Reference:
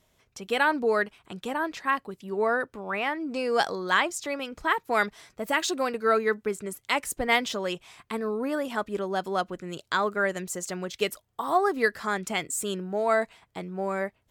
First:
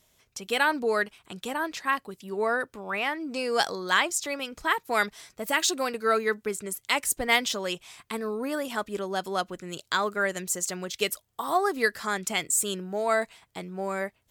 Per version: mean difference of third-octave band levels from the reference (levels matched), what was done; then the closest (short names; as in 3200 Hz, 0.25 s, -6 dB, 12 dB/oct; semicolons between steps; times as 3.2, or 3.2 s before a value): 2.5 dB: high shelf 3100 Hz +9.5 dB; gain -2 dB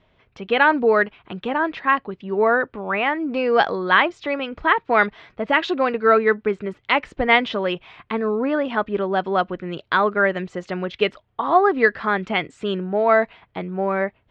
4.5 dB: LPF 3300 Hz 24 dB/oct; gain +7.5 dB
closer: first